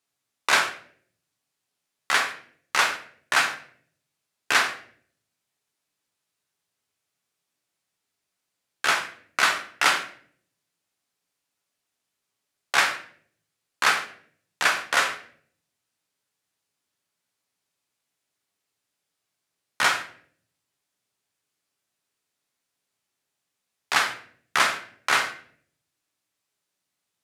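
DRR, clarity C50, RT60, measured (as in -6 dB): 3.0 dB, 10.0 dB, 0.55 s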